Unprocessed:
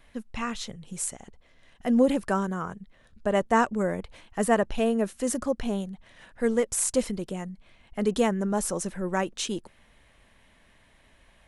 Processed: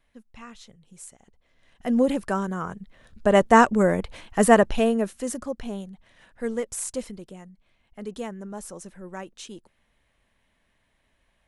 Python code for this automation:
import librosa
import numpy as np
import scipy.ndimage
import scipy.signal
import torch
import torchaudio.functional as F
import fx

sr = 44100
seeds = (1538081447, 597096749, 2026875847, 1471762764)

y = fx.gain(x, sr, db=fx.line((1.16, -12.0), (1.87, 0.0), (2.38, 0.0), (3.36, 7.0), (4.58, 7.0), (5.41, -4.0), (6.68, -4.0), (7.5, -10.0)))